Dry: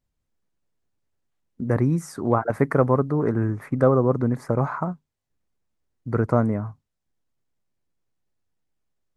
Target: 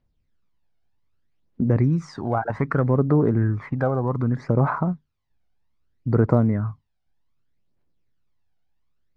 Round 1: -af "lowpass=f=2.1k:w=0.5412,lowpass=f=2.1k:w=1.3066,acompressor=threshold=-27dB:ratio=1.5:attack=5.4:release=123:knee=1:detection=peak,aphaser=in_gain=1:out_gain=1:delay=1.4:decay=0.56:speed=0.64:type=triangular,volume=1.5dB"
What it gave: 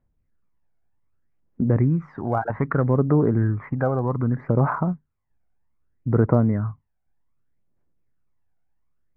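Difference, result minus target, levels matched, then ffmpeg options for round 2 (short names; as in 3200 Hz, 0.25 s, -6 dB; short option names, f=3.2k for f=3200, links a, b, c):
4000 Hz band -15.5 dB
-af "lowpass=f=5k:w=0.5412,lowpass=f=5k:w=1.3066,acompressor=threshold=-27dB:ratio=1.5:attack=5.4:release=123:knee=1:detection=peak,aphaser=in_gain=1:out_gain=1:delay=1.4:decay=0.56:speed=0.64:type=triangular,volume=1.5dB"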